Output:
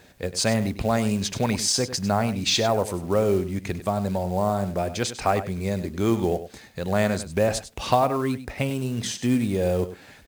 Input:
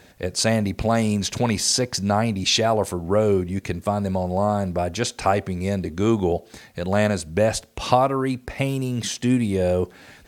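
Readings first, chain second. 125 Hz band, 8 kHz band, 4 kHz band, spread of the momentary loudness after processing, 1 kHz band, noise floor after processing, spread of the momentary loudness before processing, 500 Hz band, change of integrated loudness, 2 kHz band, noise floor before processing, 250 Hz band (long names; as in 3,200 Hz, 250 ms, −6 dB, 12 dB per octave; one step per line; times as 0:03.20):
−2.5 dB, −2.0 dB, −2.0 dB, 7 LU, −2.5 dB, −49 dBFS, 7 LU, −2.5 dB, −2.5 dB, −2.0 dB, −51 dBFS, −2.5 dB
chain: log-companded quantiser 6 bits
single-tap delay 99 ms −13 dB
level −2.5 dB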